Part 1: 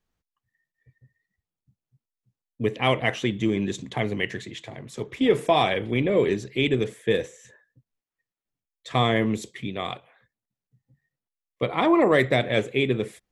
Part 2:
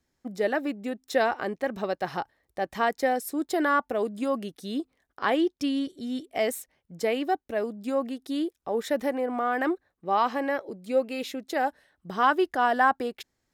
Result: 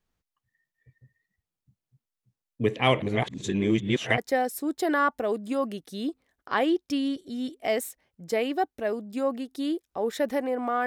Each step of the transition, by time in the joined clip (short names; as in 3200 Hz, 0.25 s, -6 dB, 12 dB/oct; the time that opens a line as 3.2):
part 1
3.02–4.18 reverse
4.18 switch to part 2 from 2.89 s